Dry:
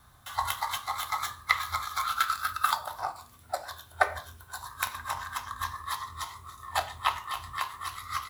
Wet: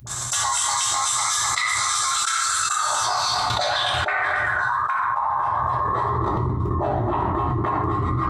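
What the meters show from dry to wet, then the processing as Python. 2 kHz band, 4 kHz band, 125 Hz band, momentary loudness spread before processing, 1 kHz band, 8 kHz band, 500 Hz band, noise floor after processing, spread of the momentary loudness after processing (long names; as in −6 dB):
+9.0 dB, +12.0 dB, +21.5 dB, 11 LU, +9.5 dB, +19.0 dB, +13.0 dB, −26 dBFS, 3 LU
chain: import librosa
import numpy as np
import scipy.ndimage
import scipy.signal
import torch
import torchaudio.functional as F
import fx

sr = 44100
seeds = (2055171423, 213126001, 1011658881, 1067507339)

y = fx.freq_compress(x, sr, knee_hz=4000.0, ratio=1.5)
y = fx.quant_float(y, sr, bits=4)
y = fx.echo_feedback(y, sr, ms=253, feedback_pct=27, wet_db=-15.0)
y = fx.filter_sweep_lowpass(y, sr, from_hz=6900.0, to_hz=320.0, start_s=2.78, end_s=6.41, q=3.5)
y = fx.low_shelf(y, sr, hz=340.0, db=8.5)
y = fx.dispersion(y, sr, late='highs', ms=71.0, hz=380.0)
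y = fx.level_steps(y, sr, step_db=23)
y = fx.riaa(y, sr, side='recording')
y = fx.rev_fdn(y, sr, rt60_s=0.68, lf_ratio=1.35, hf_ratio=0.6, size_ms=49.0, drr_db=-1.0)
y = fx.env_flatten(y, sr, amount_pct=100)
y = y * 10.0 ** (-3.5 / 20.0)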